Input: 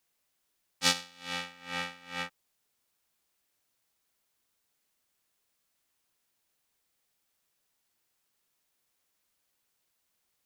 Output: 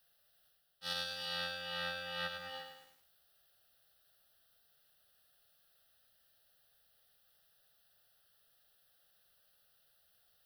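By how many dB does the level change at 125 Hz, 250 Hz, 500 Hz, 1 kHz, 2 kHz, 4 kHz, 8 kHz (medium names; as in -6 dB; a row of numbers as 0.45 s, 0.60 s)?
-7.0 dB, -11.0 dB, -0.5 dB, -6.0 dB, -4.5 dB, -5.0 dB, -17.5 dB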